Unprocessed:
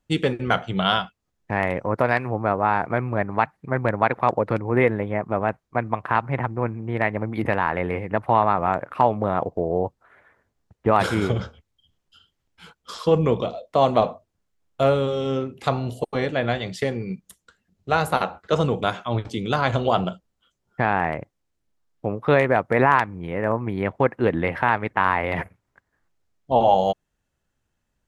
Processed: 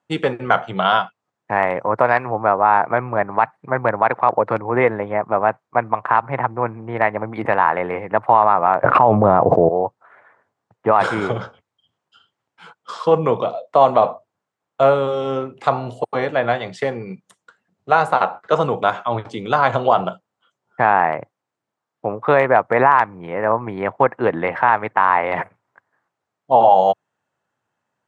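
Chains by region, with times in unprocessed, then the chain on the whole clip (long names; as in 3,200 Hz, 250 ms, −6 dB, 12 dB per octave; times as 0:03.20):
0:08.84–0:09.69: spectral tilt −3 dB per octave + envelope flattener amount 100%
whole clip: elliptic band-pass filter 110–8,800 Hz; parametric band 940 Hz +12.5 dB 2.3 octaves; boost into a limiter −2.5 dB; level −1 dB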